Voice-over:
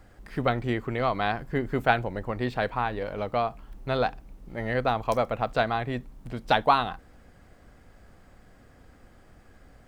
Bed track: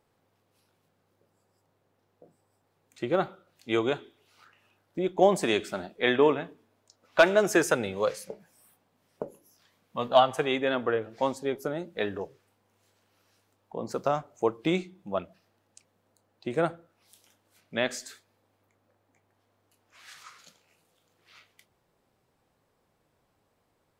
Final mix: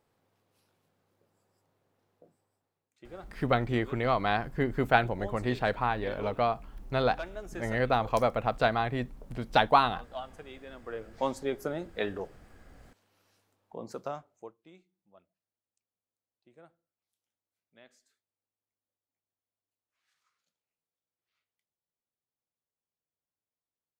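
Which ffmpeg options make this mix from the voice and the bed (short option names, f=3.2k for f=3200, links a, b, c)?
-filter_complex "[0:a]adelay=3050,volume=-1dB[a];[1:a]volume=15.5dB,afade=t=out:st=2.1:d=0.81:silence=0.133352,afade=t=in:st=10.82:d=0.48:silence=0.125893,afade=t=out:st=13.28:d=1.29:silence=0.0421697[b];[a][b]amix=inputs=2:normalize=0"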